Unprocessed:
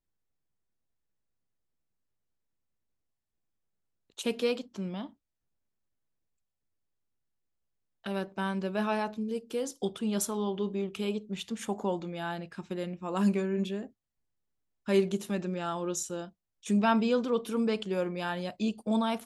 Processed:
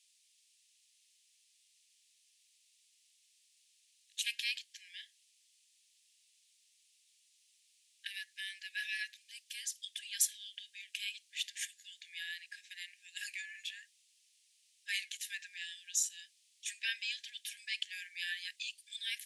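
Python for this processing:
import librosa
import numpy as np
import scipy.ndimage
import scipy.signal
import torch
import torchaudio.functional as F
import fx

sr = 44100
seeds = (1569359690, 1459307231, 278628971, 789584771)

y = fx.dmg_noise_band(x, sr, seeds[0], low_hz=2500.0, high_hz=10000.0, level_db=-74.0)
y = fx.brickwall_highpass(y, sr, low_hz=1600.0)
y = y * librosa.db_to_amplitude(3.0)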